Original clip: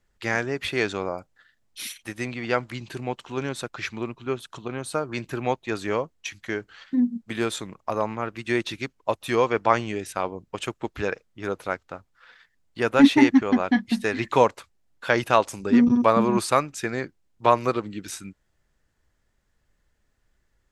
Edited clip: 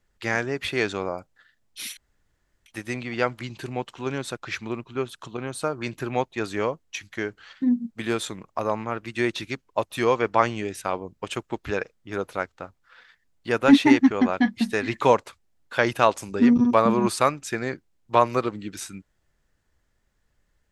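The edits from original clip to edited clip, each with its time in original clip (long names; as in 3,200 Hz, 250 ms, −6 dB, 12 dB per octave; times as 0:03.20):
0:01.97: splice in room tone 0.69 s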